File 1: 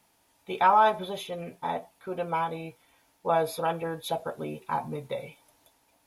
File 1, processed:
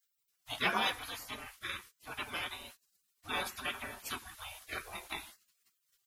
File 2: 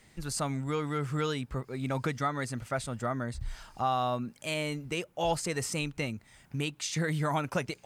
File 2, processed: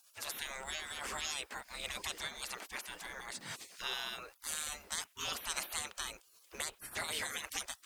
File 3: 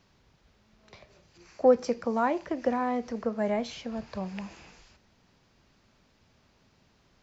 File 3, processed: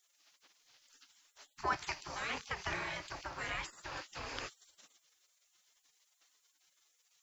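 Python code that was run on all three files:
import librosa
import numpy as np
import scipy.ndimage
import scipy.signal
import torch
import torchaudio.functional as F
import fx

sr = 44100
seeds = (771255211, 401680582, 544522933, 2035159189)

y = fx.spec_gate(x, sr, threshold_db=-25, keep='weak')
y = y * librosa.db_to_amplitude(9.5)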